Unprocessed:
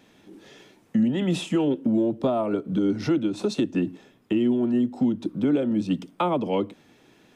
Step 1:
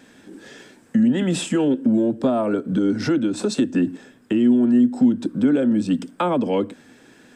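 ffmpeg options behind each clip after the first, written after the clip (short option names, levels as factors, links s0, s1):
-filter_complex "[0:a]equalizer=f=250:t=o:w=0.33:g=8,equalizer=f=500:t=o:w=0.33:g=4,equalizer=f=1600:t=o:w=0.33:g=11,equalizer=f=5000:t=o:w=0.33:g=4,equalizer=f=8000:t=o:w=0.33:g=12,asplit=2[s0][s1];[s1]alimiter=limit=0.119:level=0:latency=1:release=101,volume=1.06[s2];[s0][s2]amix=inputs=2:normalize=0,volume=0.708"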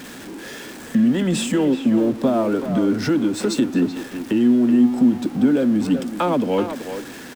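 -filter_complex "[0:a]aeval=exprs='val(0)+0.5*0.0224*sgn(val(0))':c=same,asplit=2[s0][s1];[s1]adelay=380,highpass=300,lowpass=3400,asoftclip=type=hard:threshold=0.133,volume=0.447[s2];[s0][s2]amix=inputs=2:normalize=0"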